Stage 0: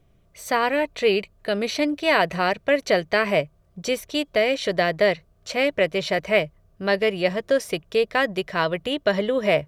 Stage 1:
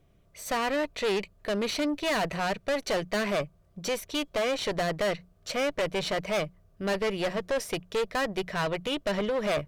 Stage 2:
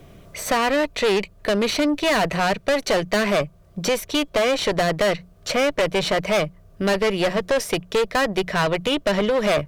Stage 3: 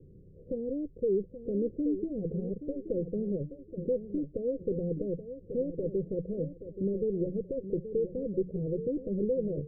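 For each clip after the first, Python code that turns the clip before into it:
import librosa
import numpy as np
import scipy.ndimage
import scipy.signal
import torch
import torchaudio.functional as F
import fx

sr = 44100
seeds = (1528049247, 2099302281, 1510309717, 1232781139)

y1 = fx.hum_notches(x, sr, base_hz=60, count=3)
y1 = fx.tube_stage(y1, sr, drive_db=24.0, bias=0.5)
y2 = fx.band_squash(y1, sr, depth_pct=40)
y2 = y2 * 10.0 ** (8.0 / 20.0)
y3 = scipy.signal.sosfilt(scipy.signal.cheby1(6, 3, 520.0, 'lowpass', fs=sr, output='sos'), y2)
y3 = fx.echo_feedback(y3, sr, ms=827, feedback_pct=29, wet_db=-11.0)
y3 = y3 * 10.0 ** (-6.0 / 20.0)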